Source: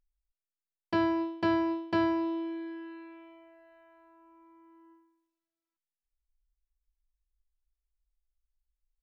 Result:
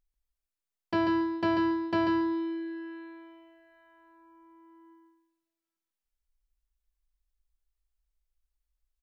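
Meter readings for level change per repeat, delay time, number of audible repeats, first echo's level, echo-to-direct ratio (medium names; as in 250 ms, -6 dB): -15.5 dB, 140 ms, 2, -5.0 dB, -5.0 dB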